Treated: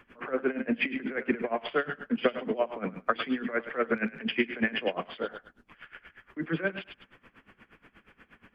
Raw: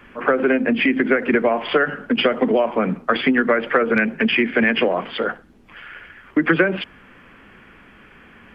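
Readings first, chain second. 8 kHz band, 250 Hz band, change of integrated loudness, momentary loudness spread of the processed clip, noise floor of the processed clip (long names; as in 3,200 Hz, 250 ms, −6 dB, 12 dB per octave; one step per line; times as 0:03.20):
can't be measured, −12.0 dB, −12.0 dB, 14 LU, −70 dBFS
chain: feedback echo with a high-pass in the loop 102 ms, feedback 29%, high-pass 630 Hz, level −9 dB
tremolo with a sine in dB 8.4 Hz, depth 20 dB
level −6 dB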